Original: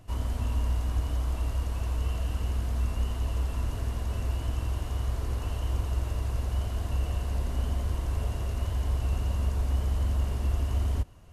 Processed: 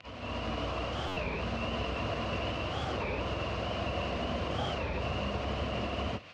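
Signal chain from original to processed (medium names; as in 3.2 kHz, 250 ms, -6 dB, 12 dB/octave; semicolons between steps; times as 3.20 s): dynamic bell 2.4 kHz, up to -5 dB, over -59 dBFS, Q 0.89; peak limiter -22 dBFS, peak gain reduction 6 dB; level rider gain up to 11 dB; crackle 75 per s -28 dBFS; plain phase-vocoder stretch 0.56×; cabinet simulation 270–4100 Hz, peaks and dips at 270 Hz -7 dB, 390 Hz -8 dB, 880 Hz -9 dB, 1.6 kHz -4 dB, 2.6 kHz +6 dB, 3.6 kHz -4 dB; buffer glitch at 1.09 s, samples 512, times 8; warped record 33 1/3 rpm, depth 250 cents; trim +5.5 dB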